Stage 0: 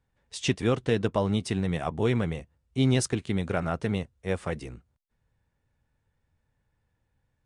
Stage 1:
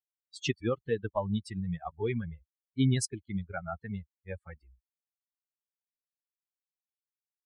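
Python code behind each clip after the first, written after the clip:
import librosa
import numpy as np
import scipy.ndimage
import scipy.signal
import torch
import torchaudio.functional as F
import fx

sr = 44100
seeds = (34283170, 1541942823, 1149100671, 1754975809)

y = fx.bin_expand(x, sr, power=3.0)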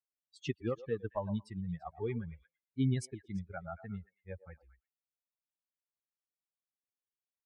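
y = fx.high_shelf(x, sr, hz=2200.0, db=-9.5)
y = fx.echo_stepped(y, sr, ms=113, hz=690.0, octaves=1.4, feedback_pct=70, wet_db=-11.5)
y = y * librosa.db_to_amplitude(-4.5)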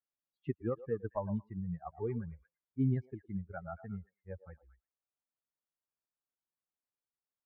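y = scipy.signal.sosfilt(scipy.signal.butter(4, 1600.0, 'lowpass', fs=sr, output='sos'), x)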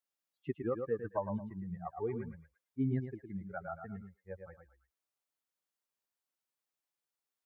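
y = fx.low_shelf(x, sr, hz=180.0, db=-11.0)
y = y + 10.0 ** (-7.0 / 20.0) * np.pad(y, (int(109 * sr / 1000.0), 0))[:len(y)]
y = y * librosa.db_to_amplitude(2.5)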